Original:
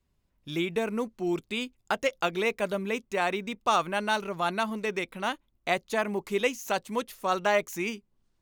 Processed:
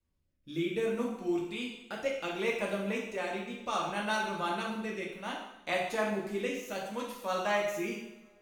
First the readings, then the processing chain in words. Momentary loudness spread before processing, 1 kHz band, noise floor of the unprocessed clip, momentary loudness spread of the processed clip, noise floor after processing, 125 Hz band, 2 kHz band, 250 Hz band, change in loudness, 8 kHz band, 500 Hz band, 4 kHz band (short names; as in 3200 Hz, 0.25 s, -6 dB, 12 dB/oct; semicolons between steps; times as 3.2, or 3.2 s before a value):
7 LU, -6.0 dB, -74 dBFS, 8 LU, -72 dBFS, -3.5 dB, -5.0 dB, -2.5 dB, -4.5 dB, -5.5 dB, -4.0 dB, -5.0 dB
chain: rotary speaker horn 0.65 Hz; two-slope reverb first 0.83 s, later 3 s, from -27 dB, DRR -3 dB; gain -7 dB